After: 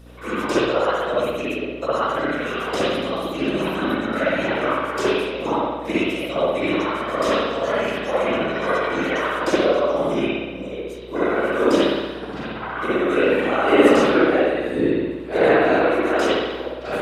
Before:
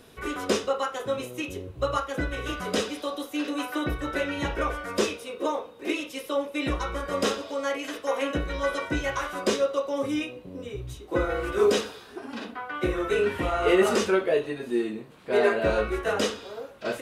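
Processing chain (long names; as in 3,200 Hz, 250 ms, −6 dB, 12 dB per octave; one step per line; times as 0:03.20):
linear-phase brick-wall high-pass 220 Hz
random phases in short frames
spring reverb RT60 1.2 s, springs 59 ms, chirp 35 ms, DRR −9 dB
mains hum 60 Hz, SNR 24 dB
level −2 dB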